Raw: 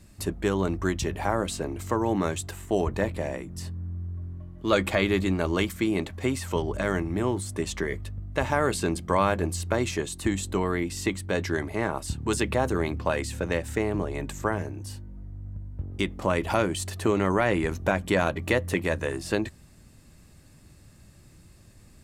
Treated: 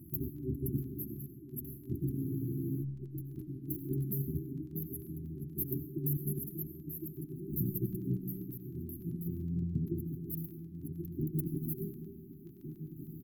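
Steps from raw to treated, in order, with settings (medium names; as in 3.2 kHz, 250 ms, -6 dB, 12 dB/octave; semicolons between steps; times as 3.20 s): gliding tape speed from 149% -> 184%; high-pass 100 Hz; hum notches 50/100/150/200/250/300/350/400/450/500 Hz; compressor with a negative ratio -32 dBFS, ratio -0.5; square tremolo 0.54 Hz, depth 60%, duty 45%; saturation -23.5 dBFS, distortion -17 dB; FFT band-reject 400–11000 Hz; crackle 13 per s -52 dBFS; echo from a far wall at 250 m, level -10 dB; on a send at -7 dB: reverberation RT60 2.3 s, pre-delay 50 ms; on the sum: spectral freeze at 2.25 s, 0.56 s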